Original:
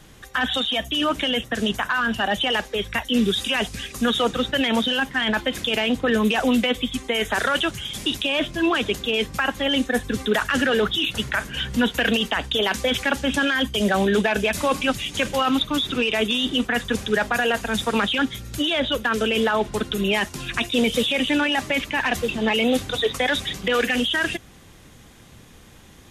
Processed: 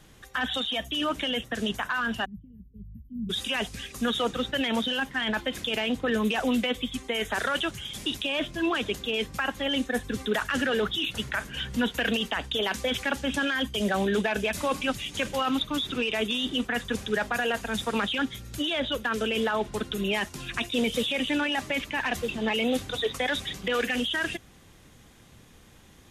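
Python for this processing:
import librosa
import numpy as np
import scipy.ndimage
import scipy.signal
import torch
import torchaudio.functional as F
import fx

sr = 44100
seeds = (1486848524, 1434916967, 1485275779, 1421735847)

y = fx.cheby2_bandstop(x, sr, low_hz=610.0, high_hz=8800.0, order=4, stop_db=60, at=(2.24, 3.29), fade=0.02)
y = y * librosa.db_to_amplitude(-6.0)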